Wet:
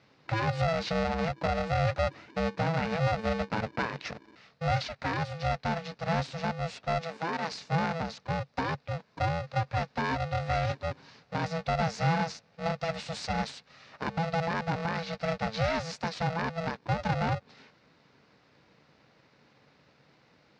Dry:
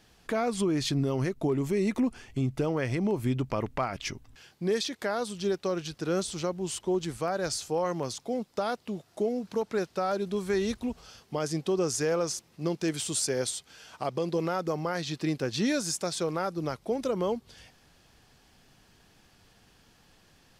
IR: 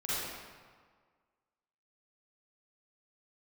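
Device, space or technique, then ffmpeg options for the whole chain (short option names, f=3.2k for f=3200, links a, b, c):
ring modulator pedal into a guitar cabinet: -filter_complex "[0:a]aeval=exprs='val(0)*sgn(sin(2*PI*330*n/s))':c=same,highpass=84,equalizer=f=140:t=q:w=4:g=7,equalizer=f=360:t=q:w=4:g=-8,equalizer=f=1.1k:t=q:w=4:g=-3,equalizer=f=3.2k:t=q:w=4:g=-8,lowpass=f=4.5k:w=0.5412,lowpass=f=4.5k:w=1.3066,asettb=1/sr,asplit=3[a][b][c];[a]atrim=end=7.014[d];[b]atrim=start=7.01:end=7.52,asetpts=PTS-STARTPTS,afade=t=in:d=0.004:c=qsin,afade=t=out:st=0.506:d=0.004:c=qsin,highpass=240[e];[c]atrim=start=7.516[f];[d][e]acrossfade=d=0.004:c1=hsin:c2=qsin[g];[g][f]acrossfade=d=0.004:c1=qsin:c2=hsin"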